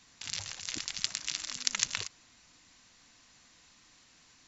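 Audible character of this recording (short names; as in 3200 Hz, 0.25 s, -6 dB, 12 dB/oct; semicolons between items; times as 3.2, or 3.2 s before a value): noise floor -62 dBFS; spectral tilt +1.0 dB/oct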